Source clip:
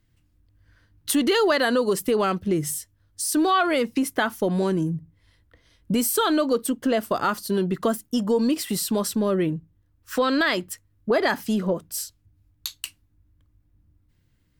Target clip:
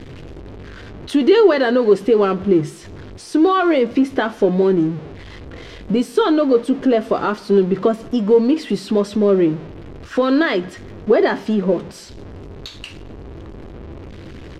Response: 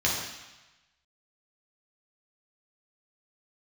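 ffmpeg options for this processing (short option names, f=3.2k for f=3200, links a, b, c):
-filter_complex "[0:a]aeval=exprs='val(0)+0.5*0.0282*sgn(val(0))':c=same,lowpass=3.6k,equalizer=f=390:w=1.2:g=9,asplit=2[a][b];[b]adelay=15,volume=-11dB[c];[a][c]amix=inputs=2:normalize=0,asplit=2[d][e];[1:a]atrim=start_sample=2205[f];[e][f]afir=irnorm=-1:irlink=0,volume=-29dB[g];[d][g]amix=inputs=2:normalize=0"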